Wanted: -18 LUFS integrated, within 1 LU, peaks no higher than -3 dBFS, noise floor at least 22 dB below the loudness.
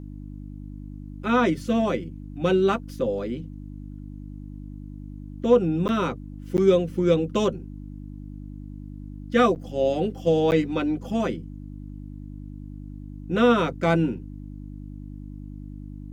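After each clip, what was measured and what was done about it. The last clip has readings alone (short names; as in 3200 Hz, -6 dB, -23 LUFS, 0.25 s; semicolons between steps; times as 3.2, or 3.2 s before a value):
dropouts 4; longest dropout 9.4 ms; hum 50 Hz; harmonics up to 300 Hz; hum level -35 dBFS; loudness -23.5 LUFS; peak -7.5 dBFS; loudness target -18.0 LUFS
-> interpolate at 5.88/6.57/9.55/10.51, 9.4 ms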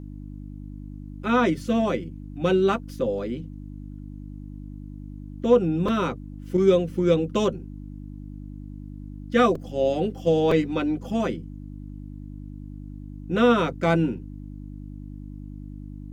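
dropouts 0; hum 50 Hz; harmonics up to 300 Hz; hum level -35 dBFS
-> de-hum 50 Hz, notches 6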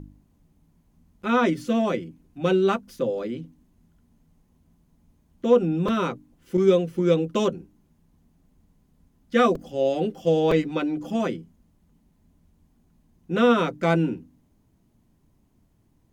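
hum none; loudness -23.5 LUFS; peak -7.0 dBFS; loudness target -18.0 LUFS
-> gain +5.5 dB; limiter -3 dBFS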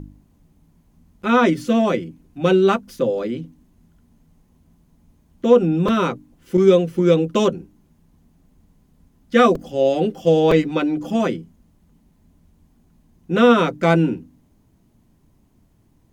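loudness -18.0 LUFS; peak -3.0 dBFS; noise floor -59 dBFS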